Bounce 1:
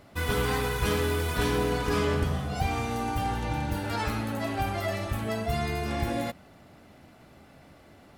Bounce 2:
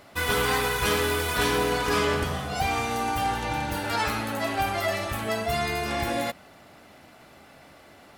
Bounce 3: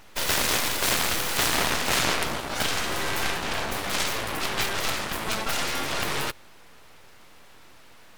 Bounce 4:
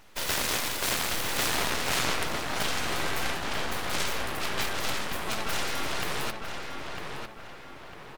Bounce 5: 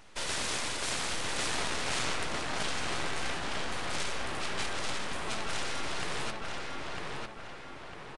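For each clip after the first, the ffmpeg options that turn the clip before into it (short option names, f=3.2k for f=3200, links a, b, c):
-af "lowshelf=f=350:g=-11,volume=6.5dB"
-af "acontrast=90,aeval=exprs='abs(val(0))':c=same,aeval=exprs='0.501*(cos(1*acos(clip(val(0)/0.501,-1,1)))-cos(1*PI/2))+0.158*(cos(8*acos(clip(val(0)/0.501,-1,1)))-cos(8*PI/2))':c=same,volume=-3dB"
-filter_complex "[0:a]asplit=2[a][b];[b]adelay=952,lowpass=f=3k:p=1,volume=-4.5dB,asplit=2[c][d];[d]adelay=952,lowpass=f=3k:p=1,volume=0.46,asplit=2[e][f];[f]adelay=952,lowpass=f=3k:p=1,volume=0.46,asplit=2[g][h];[h]adelay=952,lowpass=f=3k:p=1,volume=0.46,asplit=2[i][j];[j]adelay=952,lowpass=f=3k:p=1,volume=0.46,asplit=2[k][l];[l]adelay=952,lowpass=f=3k:p=1,volume=0.46[m];[a][c][e][g][i][k][m]amix=inputs=7:normalize=0,volume=-4.5dB"
-af "asoftclip=type=tanh:threshold=-26.5dB,aresample=22050,aresample=44100"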